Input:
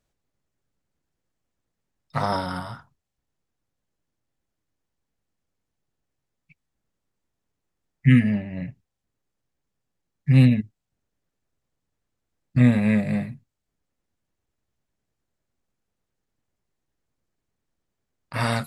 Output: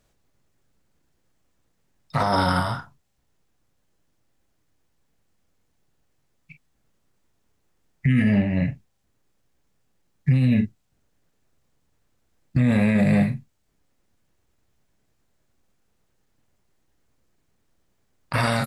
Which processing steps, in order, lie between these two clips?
early reflections 31 ms -11.5 dB, 45 ms -14 dB; compressor with a negative ratio -19 dBFS, ratio -1; peak limiter -17.5 dBFS, peak gain reduction 10.5 dB; trim +6.5 dB

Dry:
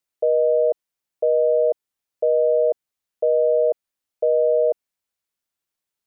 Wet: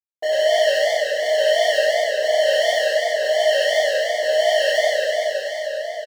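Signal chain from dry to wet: resonant low shelf 540 Hz -11.5 dB, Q 1.5; hum notches 60/120/180/240 Hz; comb 6.8 ms, depth 60%; dynamic bell 300 Hz, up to +3 dB, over -43 dBFS, Q 4.2; vibrato 14 Hz 19 cents; small resonant body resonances 290/580 Hz, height 18 dB, ringing for 95 ms; bit crusher 8-bit; hard clipper -23.5 dBFS, distortion -7 dB; delay 887 ms -13.5 dB; plate-style reverb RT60 3.9 s, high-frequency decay 0.95×, DRR -9 dB; modulated delay 96 ms, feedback 74%, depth 171 cents, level -5.5 dB; trim -1.5 dB

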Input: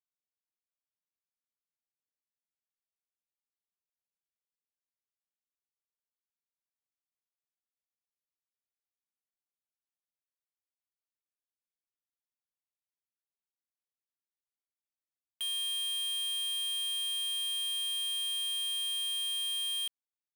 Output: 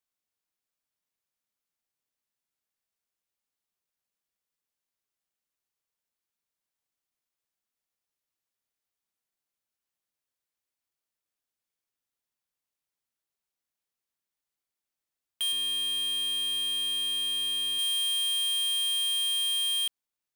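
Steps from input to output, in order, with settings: 15.52–17.79 s: tone controls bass +14 dB, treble -5 dB; trim +6 dB

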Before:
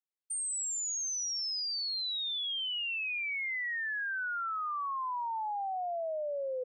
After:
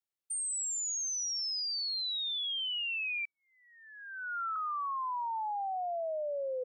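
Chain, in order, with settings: 3.25–4.56 s: elliptic low-pass 1.4 kHz, stop band 40 dB

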